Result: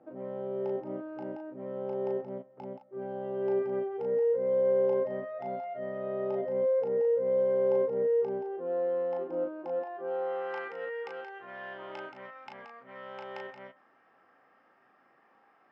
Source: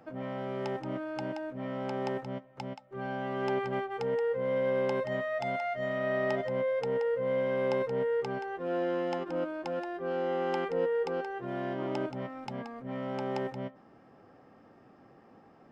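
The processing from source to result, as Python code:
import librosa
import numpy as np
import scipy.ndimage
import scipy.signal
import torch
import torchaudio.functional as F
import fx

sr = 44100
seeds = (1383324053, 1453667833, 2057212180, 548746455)

y = fx.room_early_taps(x, sr, ms=(21, 36), db=(-10.0, -4.0))
y = fx.quant_float(y, sr, bits=4, at=(7.37, 7.87))
y = fx.filter_sweep_bandpass(y, sr, from_hz=410.0, to_hz=1700.0, start_s=9.58, end_s=10.76, q=1.2)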